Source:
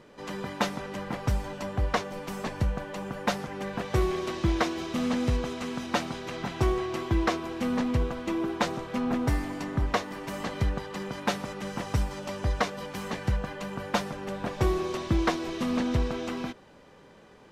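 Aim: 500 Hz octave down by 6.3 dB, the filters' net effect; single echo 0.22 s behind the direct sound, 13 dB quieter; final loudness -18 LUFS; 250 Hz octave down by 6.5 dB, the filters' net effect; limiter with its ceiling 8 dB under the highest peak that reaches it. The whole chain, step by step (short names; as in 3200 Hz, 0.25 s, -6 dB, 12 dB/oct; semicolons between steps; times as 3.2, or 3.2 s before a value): bell 250 Hz -6.5 dB; bell 500 Hz -6 dB; limiter -21.5 dBFS; echo 0.22 s -13 dB; gain +17 dB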